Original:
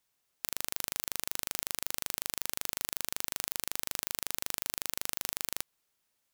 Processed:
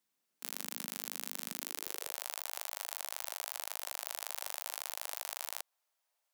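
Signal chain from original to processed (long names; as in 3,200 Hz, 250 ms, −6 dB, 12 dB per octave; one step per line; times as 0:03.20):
high-pass filter sweep 210 Hz → 680 Hz, 0:01.54–0:02.27
pitch-shifted copies added +3 semitones −6 dB, +5 semitones −13 dB
level −6 dB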